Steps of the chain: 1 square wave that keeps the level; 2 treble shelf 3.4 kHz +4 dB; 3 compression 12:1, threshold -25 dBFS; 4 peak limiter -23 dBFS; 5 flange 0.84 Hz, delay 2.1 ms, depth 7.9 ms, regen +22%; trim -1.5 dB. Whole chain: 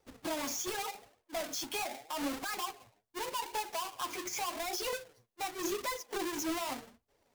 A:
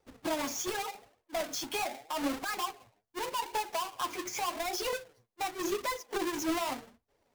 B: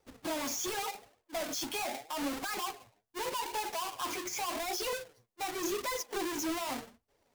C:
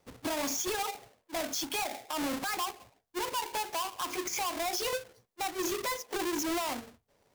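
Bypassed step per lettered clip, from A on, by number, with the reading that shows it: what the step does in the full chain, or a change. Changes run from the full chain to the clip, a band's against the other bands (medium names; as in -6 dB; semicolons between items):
2, 8 kHz band -3.0 dB; 3, mean gain reduction 8.0 dB; 5, crest factor change -3.0 dB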